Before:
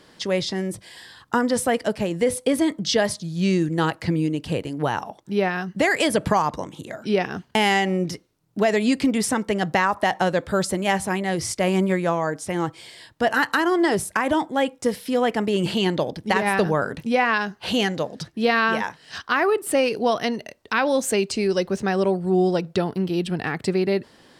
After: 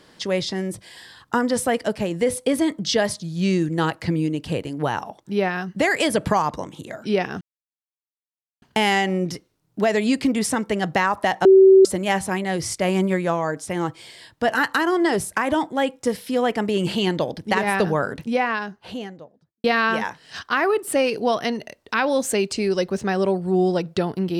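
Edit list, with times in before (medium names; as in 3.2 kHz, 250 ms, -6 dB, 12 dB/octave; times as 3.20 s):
7.41 s: insert silence 1.21 s
10.24–10.64 s: bleep 383 Hz -7 dBFS
16.83–18.43 s: studio fade out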